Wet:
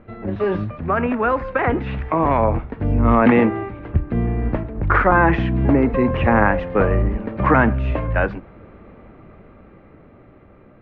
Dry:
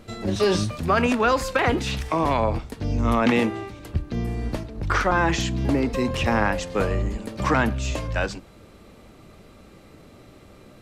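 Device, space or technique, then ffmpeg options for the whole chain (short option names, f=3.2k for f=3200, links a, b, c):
action camera in a waterproof case: -af "lowpass=f=2.1k:w=0.5412,lowpass=f=2.1k:w=1.3066,dynaudnorm=f=480:g=9:m=12.5dB" -ar 44100 -c:a aac -b:a 96k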